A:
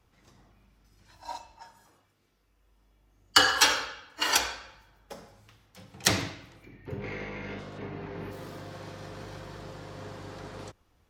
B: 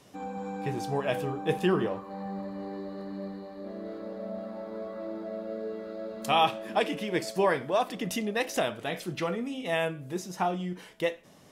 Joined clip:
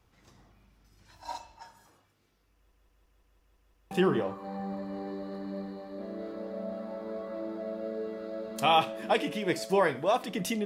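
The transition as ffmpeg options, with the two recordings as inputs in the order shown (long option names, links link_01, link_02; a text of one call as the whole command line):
ffmpeg -i cue0.wav -i cue1.wav -filter_complex "[0:a]apad=whole_dur=10.65,atrim=end=10.65,asplit=8[link_01][link_02][link_03][link_04][link_05][link_06][link_07][link_08];[link_01]atrim=end=2.722[link_09];[link_02]atrim=start=2.548:end=2.722[link_10];[link_03]atrim=start=2.548:end=2.722[link_11];[link_04]atrim=start=2.548:end=2.722[link_12];[link_05]atrim=start=2.548:end=2.722[link_13];[link_06]atrim=start=2.548:end=2.722[link_14];[link_07]atrim=start=2.548:end=2.722[link_15];[link_08]atrim=start=2.548:end=2.722[link_16];[1:a]atrim=start=1.568:end=8.31[link_17];[link_09][link_10]acrossfade=duration=0.004:curve1=hsin:curve2=hsin[link_18];[link_18][link_11]acrossfade=duration=0.004:curve1=hsin:curve2=hsin[link_19];[link_19][link_12]acrossfade=duration=0.004:curve1=hsin:curve2=hsin[link_20];[link_20][link_13]acrossfade=duration=0.004:curve1=hsin:curve2=hsin[link_21];[link_21][link_14]acrossfade=duration=0.004:curve1=hsin:curve2=hsin[link_22];[link_22][link_15]acrossfade=duration=0.004:curve1=hsin:curve2=hsin[link_23];[link_23][link_16]acrossfade=duration=0.004:curve1=hsin:curve2=hsin[link_24];[link_24][link_17]acrossfade=duration=0.004:curve1=hsin:curve2=hsin" out.wav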